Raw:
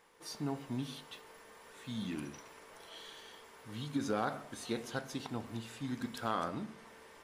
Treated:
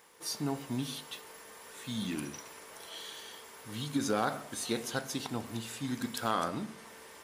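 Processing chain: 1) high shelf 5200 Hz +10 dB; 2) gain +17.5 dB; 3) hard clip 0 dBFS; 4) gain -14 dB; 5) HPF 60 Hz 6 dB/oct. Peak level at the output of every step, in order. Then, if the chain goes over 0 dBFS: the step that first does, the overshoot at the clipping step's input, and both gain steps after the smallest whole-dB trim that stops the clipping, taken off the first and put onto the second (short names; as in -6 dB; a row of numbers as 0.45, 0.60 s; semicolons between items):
-20.0, -2.5, -2.5, -16.5, -16.0 dBFS; no overload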